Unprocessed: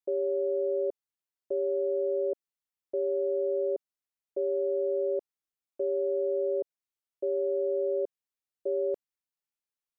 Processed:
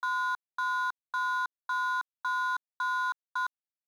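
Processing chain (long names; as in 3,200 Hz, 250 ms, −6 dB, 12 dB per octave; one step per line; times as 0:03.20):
running median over 41 samples
change of speed 2.58×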